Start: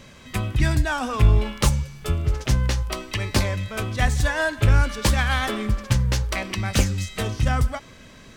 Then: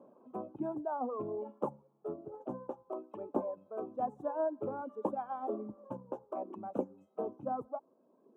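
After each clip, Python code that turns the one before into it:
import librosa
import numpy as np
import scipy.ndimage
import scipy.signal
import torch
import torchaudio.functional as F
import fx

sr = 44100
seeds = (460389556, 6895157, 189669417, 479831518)

y = scipy.signal.sosfilt(scipy.signal.cheby2(4, 40, 1800.0, 'lowpass', fs=sr, output='sos'), x)
y = fx.dereverb_blind(y, sr, rt60_s=1.7)
y = scipy.signal.sosfilt(scipy.signal.butter(4, 270.0, 'highpass', fs=sr, output='sos'), y)
y = F.gain(torch.from_numpy(y), -4.5).numpy()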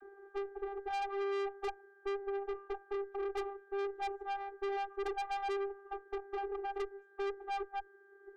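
y = x + 10.0 ** (-60.0 / 20.0) * np.sin(2.0 * np.pi * 1500.0 * np.arange(len(x)) / sr)
y = fx.vocoder(y, sr, bands=32, carrier='saw', carrier_hz=397.0)
y = fx.tube_stage(y, sr, drive_db=45.0, bias=0.55)
y = F.gain(torch.from_numpy(y), 11.0).numpy()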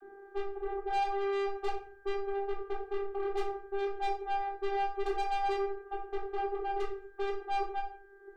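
y = fx.room_shoebox(x, sr, seeds[0], volume_m3=470.0, walls='furnished', distance_m=3.3)
y = F.gain(torch.from_numpy(y), -1.5).numpy()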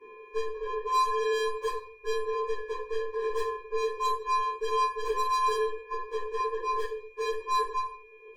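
y = fx.partial_stretch(x, sr, pct=123)
y = F.gain(torch.from_numpy(y), 6.0).numpy()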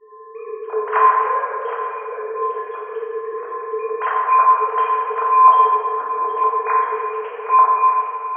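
y = fx.sine_speech(x, sr)
y = y + 10.0 ** (-12.5 / 20.0) * np.pad(y, (int(767 * sr / 1000.0), 0))[:len(y)]
y = fx.rev_plate(y, sr, seeds[1], rt60_s=2.3, hf_ratio=0.6, predelay_ms=0, drr_db=-5.0)
y = F.gain(torch.from_numpy(y), 5.5).numpy()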